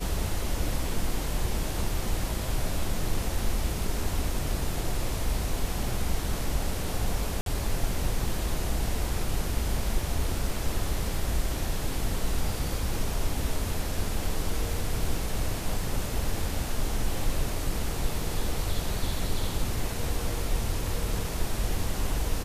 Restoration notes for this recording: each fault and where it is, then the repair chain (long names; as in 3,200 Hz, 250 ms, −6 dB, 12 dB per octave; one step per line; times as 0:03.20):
0:07.41–0:07.46: drop-out 52 ms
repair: repair the gap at 0:07.41, 52 ms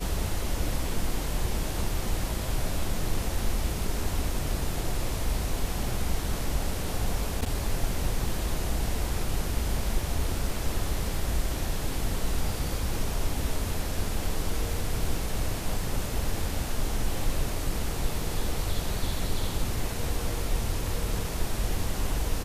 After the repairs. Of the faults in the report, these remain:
none of them is left